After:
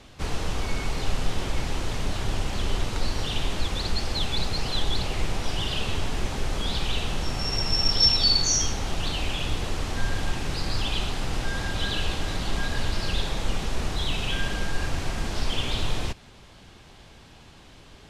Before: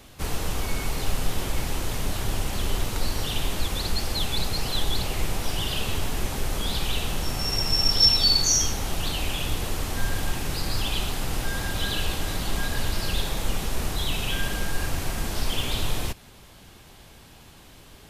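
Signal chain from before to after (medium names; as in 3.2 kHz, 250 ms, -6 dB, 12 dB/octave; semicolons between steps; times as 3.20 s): low-pass 6.4 kHz 12 dB/octave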